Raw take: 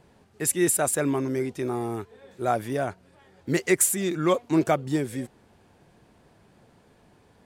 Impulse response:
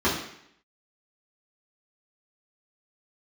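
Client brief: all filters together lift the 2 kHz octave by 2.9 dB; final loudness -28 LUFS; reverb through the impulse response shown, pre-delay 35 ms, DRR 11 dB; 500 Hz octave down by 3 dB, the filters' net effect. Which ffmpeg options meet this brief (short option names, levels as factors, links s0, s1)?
-filter_complex "[0:a]equalizer=f=500:t=o:g=-4.5,equalizer=f=2000:t=o:g=3.5,asplit=2[s0][s1];[1:a]atrim=start_sample=2205,adelay=35[s2];[s1][s2]afir=irnorm=-1:irlink=0,volume=0.0447[s3];[s0][s3]amix=inputs=2:normalize=0,volume=0.75"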